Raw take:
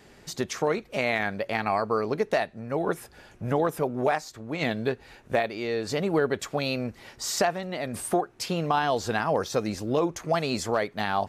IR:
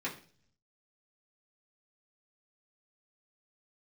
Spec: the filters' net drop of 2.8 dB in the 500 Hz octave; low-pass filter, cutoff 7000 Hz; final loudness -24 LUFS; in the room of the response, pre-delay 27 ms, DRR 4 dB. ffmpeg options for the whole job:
-filter_complex "[0:a]lowpass=7k,equalizer=f=500:t=o:g=-3.5,asplit=2[a][b];[1:a]atrim=start_sample=2205,adelay=27[c];[b][c]afir=irnorm=-1:irlink=0,volume=-8dB[d];[a][d]amix=inputs=2:normalize=0,volume=4.5dB"

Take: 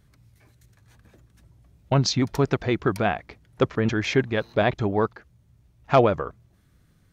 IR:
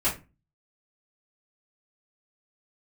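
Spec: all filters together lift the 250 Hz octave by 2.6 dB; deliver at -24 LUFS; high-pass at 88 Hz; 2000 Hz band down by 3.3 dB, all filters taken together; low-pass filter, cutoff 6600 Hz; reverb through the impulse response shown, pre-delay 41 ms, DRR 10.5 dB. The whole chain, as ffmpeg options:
-filter_complex "[0:a]highpass=88,lowpass=6.6k,equalizer=f=250:t=o:g=3.5,equalizer=f=2k:t=o:g=-4.5,asplit=2[a][b];[1:a]atrim=start_sample=2205,adelay=41[c];[b][c]afir=irnorm=-1:irlink=0,volume=-21.5dB[d];[a][d]amix=inputs=2:normalize=0,volume=-1.5dB"

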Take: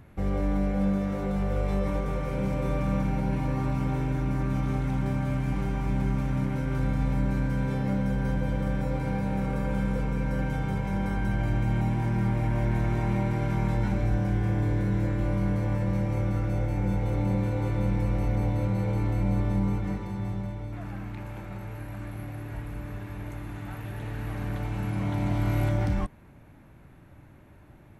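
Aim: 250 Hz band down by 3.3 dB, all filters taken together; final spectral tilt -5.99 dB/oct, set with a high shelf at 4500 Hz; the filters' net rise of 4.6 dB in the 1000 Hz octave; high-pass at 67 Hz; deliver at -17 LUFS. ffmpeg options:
-af "highpass=67,equalizer=f=250:t=o:g=-5,equalizer=f=1k:t=o:g=6.5,highshelf=f=4.5k:g=-4.5,volume=13.5dB"

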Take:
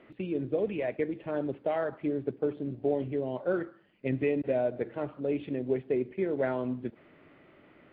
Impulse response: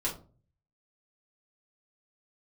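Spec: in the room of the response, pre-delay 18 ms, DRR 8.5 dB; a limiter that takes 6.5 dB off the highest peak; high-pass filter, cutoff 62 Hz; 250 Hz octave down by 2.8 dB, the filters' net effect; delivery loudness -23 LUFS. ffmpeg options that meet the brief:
-filter_complex "[0:a]highpass=62,equalizer=f=250:t=o:g=-3.5,alimiter=limit=-23.5dB:level=0:latency=1,asplit=2[a][b];[1:a]atrim=start_sample=2205,adelay=18[c];[b][c]afir=irnorm=-1:irlink=0,volume=-13.5dB[d];[a][d]amix=inputs=2:normalize=0,volume=11.5dB"

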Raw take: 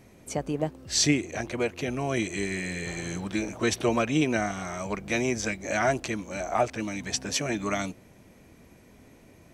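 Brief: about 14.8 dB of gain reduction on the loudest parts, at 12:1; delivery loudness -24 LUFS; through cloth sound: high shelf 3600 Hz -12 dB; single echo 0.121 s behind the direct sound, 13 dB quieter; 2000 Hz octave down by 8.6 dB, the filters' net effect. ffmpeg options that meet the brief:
-af "equalizer=f=2k:t=o:g=-7.5,acompressor=threshold=-34dB:ratio=12,highshelf=f=3.6k:g=-12,aecho=1:1:121:0.224,volume=16dB"

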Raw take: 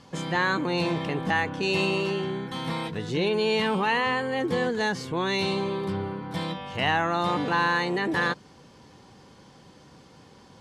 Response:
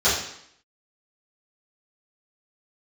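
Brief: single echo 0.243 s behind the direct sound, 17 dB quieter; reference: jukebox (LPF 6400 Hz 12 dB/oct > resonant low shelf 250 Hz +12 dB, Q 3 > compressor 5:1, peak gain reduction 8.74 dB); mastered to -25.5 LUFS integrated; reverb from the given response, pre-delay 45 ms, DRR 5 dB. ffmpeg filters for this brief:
-filter_complex "[0:a]aecho=1:1:243:0.141,asplit=2[a][b];[1:a]atrim=start_sample=2205,adelay=45[c];[b][c]afir=irnorm=-1:irlink=0,volume=-23dB[d];[a][d]amix=inputs=2:normalize=0,lowpass=6.4k,lowshelf=f=250:t=q:w=3:g=12,acompressor=threshold=-13dB:ratio=5,volume=-7.5dB"

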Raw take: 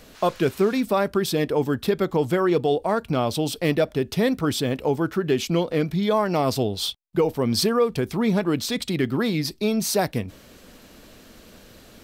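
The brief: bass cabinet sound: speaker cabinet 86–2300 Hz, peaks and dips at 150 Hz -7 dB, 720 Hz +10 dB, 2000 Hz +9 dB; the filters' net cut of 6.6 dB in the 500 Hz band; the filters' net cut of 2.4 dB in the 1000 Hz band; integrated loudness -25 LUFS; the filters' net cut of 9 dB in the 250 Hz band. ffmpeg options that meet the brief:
-af "highpass=f=86:w=0.5412,highpass=f=86:w=1.3066,equalizer=f=150:t=q:w=4:g=-7,equalizer=f=720:t=q:w=4:g=10,equalizer=f=2k:t=q:w=4:g=9,lowpass=f=2.3k:w=0.5412,lowpass=f=2.3k:w=1.3066,equalizer=f=250:t=o:g=-9,equalizer=f=500:t=o:g=-5.5,equalizer=f=1k:t=o:g=-9,volume=4.5dB"

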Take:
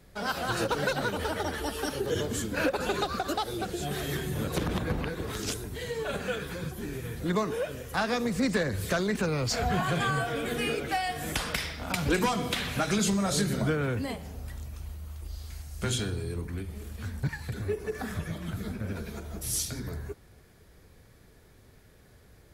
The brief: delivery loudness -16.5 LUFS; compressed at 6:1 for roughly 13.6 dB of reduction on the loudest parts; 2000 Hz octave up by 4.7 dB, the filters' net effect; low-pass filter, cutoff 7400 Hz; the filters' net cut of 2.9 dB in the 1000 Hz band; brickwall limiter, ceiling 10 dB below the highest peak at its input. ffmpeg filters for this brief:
-af "lowpass=7.4k,equalizer=f=1k:t=o:g=-7,equalizer=f=2k:t=o:g=9,acompressor=threshold=-36dB:ratio=6,volume=24dB,alimiter=limit=-7dB:level=0:latency=1"

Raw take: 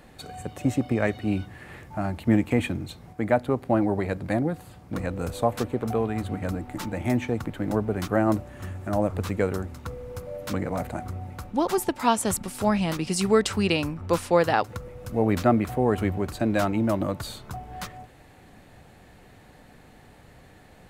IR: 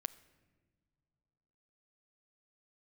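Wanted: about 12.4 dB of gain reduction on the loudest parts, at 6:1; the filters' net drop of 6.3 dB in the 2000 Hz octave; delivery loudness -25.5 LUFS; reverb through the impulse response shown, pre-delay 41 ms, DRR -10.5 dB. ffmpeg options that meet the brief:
-filter_complex "[0:a]equalizer=f=2k:t=o:g=-8.5,acompressor=threshold=-29dB:ratio=6,asplit=2[a][b];[1:a]atrim=start_sample=2205,adelay=41[c];[b][c]afir=irnorm=-1:irlink=0,volume=12.5dB[d];[a][d]amix=inputs=2:normalize=0,volume=-1.5dB"

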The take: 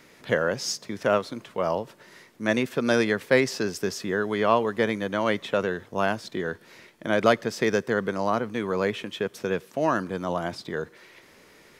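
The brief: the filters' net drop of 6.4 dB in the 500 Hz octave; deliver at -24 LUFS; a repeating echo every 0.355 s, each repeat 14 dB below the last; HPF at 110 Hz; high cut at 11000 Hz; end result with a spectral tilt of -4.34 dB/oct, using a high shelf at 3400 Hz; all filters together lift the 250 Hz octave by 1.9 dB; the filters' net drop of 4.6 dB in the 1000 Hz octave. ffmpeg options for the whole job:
-af "highpass=110,lowpass=11k,equalizer=f=250:t=o:g=5,equalizer=f=500:t=o:g=-8.5,equalizer=f=1k:t=o:g=-4,highshelf=f=3.4k:g=3,aecho=1:1:355|710:0.2|0.0399,volume=4dB"

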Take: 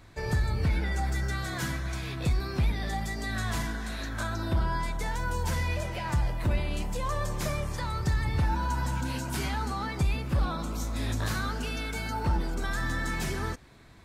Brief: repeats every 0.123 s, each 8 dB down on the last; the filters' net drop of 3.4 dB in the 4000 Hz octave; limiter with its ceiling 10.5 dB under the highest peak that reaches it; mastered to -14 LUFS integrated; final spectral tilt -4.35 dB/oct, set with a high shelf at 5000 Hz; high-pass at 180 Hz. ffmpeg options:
-af "highpass=180,equalizer=f=4k:t=o:g=-8,highshelf=f=5k:g=8,alimiter=level_in=5dB:limit=-24dB:level=0:latency=1,volume=-5dB,aecho=1:1:123|246|369|492|615:0.398|0.159|0.0637|0.0255|0.0102,volume=23dB"

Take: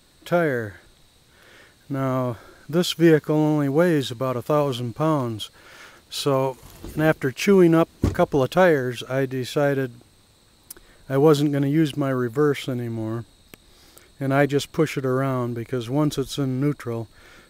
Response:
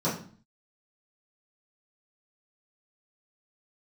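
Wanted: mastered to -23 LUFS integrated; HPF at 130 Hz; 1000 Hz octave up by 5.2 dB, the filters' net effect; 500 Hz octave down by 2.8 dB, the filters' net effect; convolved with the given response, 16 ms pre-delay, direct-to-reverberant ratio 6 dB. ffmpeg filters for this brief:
-filter_complex "[0:a]highpass=130,equalizer=f=500:t=o:g=-5.5,equalizer=f=1k:t=o:g=8.5,asplit=2[a][b];[1:a]atrim=start_sample=2205,adelay=16[c];[b][c]afir=irnorm=-1:irlink=0,volume=-17dB[d];[a][d]amix=inputs=2:normalize=0,volume=-3dB"

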